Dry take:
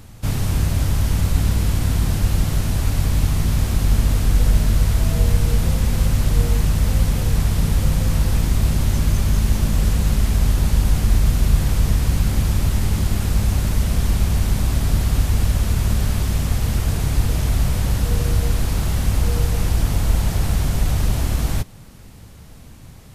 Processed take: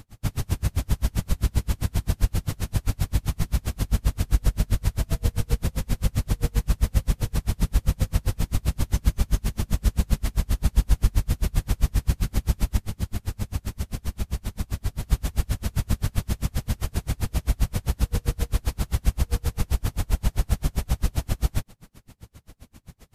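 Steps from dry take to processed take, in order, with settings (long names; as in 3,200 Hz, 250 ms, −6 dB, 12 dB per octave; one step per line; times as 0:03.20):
0:12.77–0:15.03: flanger 1.8 Hz, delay 9.1 ms, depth 2.3 ms, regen −61%
tremolo with a sine in dB 7.6 Hz, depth 38 dB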